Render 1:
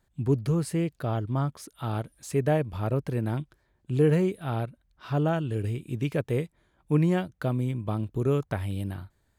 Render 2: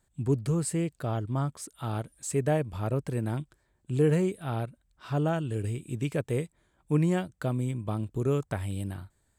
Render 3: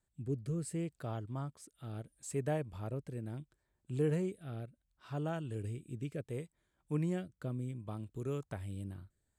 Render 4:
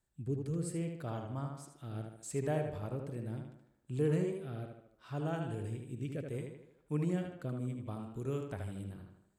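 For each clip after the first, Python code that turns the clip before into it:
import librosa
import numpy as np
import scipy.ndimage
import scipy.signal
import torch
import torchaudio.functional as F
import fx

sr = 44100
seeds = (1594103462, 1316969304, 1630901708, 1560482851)

y1 = fx.peak_eq(x, sr, hz=8000.0, db=12.5, octaves=0.38)
y1 = y1 * 10.0 ** (-2.0 / 20.0)
y2 = fx.rotary(y1, sr, hz=0.7)
y2 = y2 * 10.0 ** (-8.5 / 20.0)
y3 = fx.echo_tape(y2, sr, ms=77, feedback_pct=54, wet_db=-3.5, lp_hz=4100.0, drive_db=24.0, wow_cents=35)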